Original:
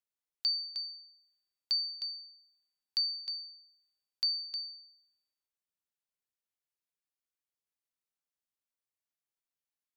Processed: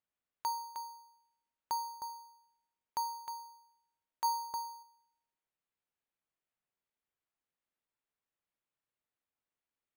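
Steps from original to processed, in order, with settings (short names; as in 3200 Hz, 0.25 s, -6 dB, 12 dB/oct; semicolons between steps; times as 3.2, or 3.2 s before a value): 4.24–4.83 high shelf 2800 Hz +5.5 dB; careless resampling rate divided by 8×, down none, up hold; gain -4.5 dB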